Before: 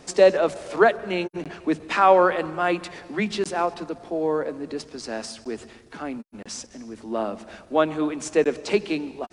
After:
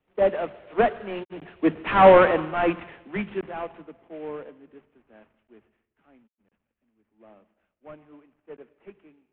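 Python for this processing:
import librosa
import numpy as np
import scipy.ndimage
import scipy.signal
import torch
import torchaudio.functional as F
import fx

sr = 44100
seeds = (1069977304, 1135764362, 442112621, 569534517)

y = fx.cvsd(x, sr, bps=16000)
y = fx.doppler_pass(y, sr, speed_mps=11, closest_m=8.9, pass_at_s=2.2)
y = fx.band_widen(y, sr, depth_pct=70)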